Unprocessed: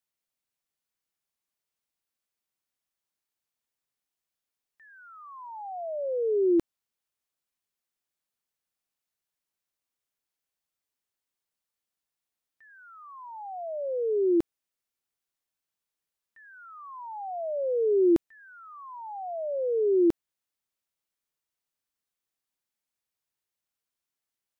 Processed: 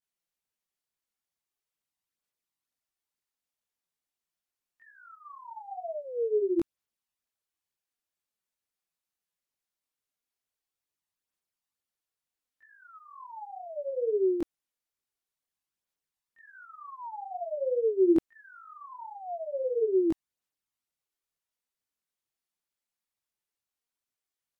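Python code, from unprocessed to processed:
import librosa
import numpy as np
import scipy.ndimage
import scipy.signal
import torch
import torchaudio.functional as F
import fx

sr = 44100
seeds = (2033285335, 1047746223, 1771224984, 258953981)

y = fx.chorus_voices(x, sr, voices=2, hz=1.1, base_ms=21, depth_ms=3.0, mix_pct=65)
y = fx.wow_flutter(y, sr, seeds[0], rate_hz=2.1, depth_cents=29.0)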